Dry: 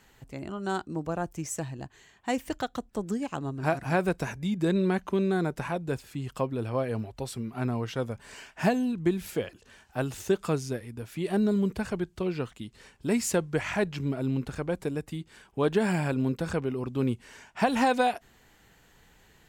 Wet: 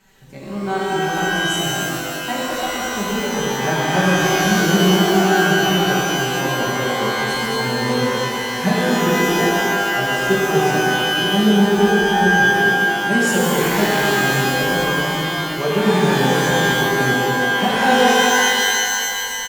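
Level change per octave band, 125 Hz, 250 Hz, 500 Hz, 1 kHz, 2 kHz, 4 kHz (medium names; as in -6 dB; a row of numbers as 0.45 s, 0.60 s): +9.5 dB, +10.0 dB, +11.5 dB, +15.5 dB, +21.0 dB, +23.5 dB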